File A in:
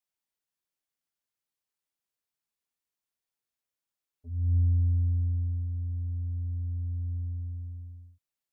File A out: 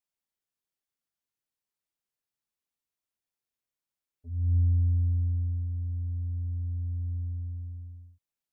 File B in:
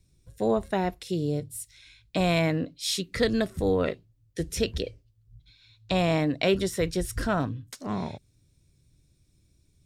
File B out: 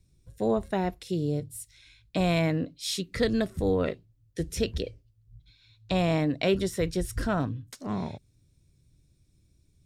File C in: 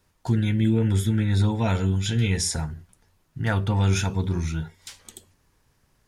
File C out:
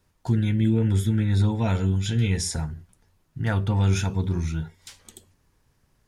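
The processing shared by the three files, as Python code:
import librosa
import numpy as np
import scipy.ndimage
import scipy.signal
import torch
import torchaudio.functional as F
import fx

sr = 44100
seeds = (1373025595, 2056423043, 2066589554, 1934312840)

y = fx.low_shelf(x, sr, hz=420.0, db=3.5)
y = F.gain(torch.from_numpy(y), -3.0).numpy()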